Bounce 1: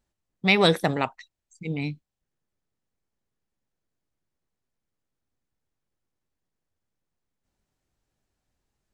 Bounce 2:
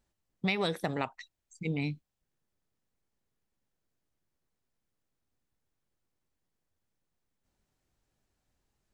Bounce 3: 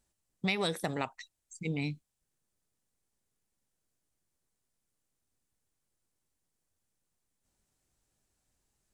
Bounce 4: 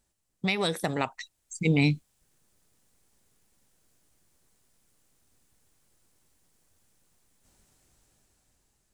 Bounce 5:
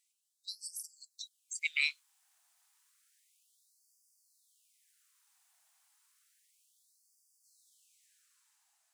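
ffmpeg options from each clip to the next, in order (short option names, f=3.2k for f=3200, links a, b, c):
-af "acompressor=threshold=-28dB:ratio=6"
-af "equalizer=f=8.9k:t=o:w=1.2:g=10.5,volume=-1.5dB"
-af "dynaudnorm=f=470:g=7:m=11.5dB,volume=3dB"
-af "afftfilt=real='re*gte(b*sr/1024,640*pow(4600/640,0.5+0.5*sin(2*PI*0.31*pts/sr)))':imag='im*gte(b*sr/1024,640*pow(4600/640,0.5+0.5*sin(2*PI*0.31*pts/sr)))':win_size=1024:overlap=0.75"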